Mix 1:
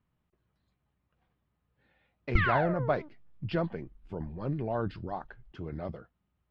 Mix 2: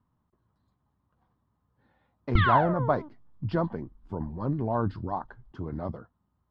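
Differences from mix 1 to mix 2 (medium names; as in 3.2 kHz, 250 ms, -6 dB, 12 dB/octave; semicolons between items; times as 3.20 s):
background: add resonant low-pass 3.5 kHz, resonance Q 6.1; master: add fifteen-band graphic EQ 100 Hz +7 dB, 250 Hz +7 dB, 1 kHz +10 dB, 2.5 kHz -11 dB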